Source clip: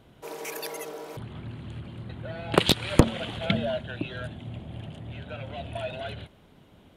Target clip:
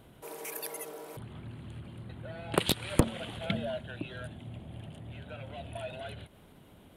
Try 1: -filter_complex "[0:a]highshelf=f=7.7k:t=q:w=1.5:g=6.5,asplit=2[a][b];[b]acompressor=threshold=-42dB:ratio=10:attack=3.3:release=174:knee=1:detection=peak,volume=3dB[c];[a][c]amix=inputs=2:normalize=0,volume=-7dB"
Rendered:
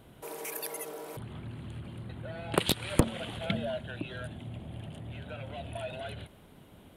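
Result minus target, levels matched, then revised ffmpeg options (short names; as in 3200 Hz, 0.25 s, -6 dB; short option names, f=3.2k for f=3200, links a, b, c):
compressor: peak gain reduction -9.5 dB
-filter_complex "[0:a]highshelf=f=7.7k:t=q:w=1.5:g=6.5,asplit=2[a][b];[b]acompressor=threshold=-52.5dB:ratio=10:attack=3.3:release=174:knee=1:detection=peak,volume=3dB[c];[a][c]amix=inputs=2:normalize=0,volume=-7dB"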